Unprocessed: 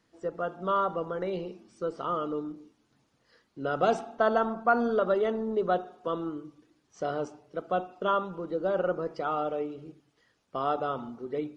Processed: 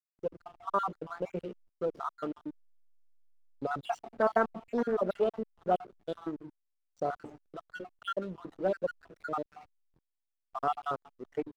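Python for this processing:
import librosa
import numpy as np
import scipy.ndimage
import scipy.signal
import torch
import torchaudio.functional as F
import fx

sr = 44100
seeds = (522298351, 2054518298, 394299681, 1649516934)

y = fx.spec_dropout(x, sr, seeds[0], share_pct=63)
y = fx.backlash(y, sr, play_db=-46.5)
y = fx.doppler_dist(y, sr, depth_ms=0.24)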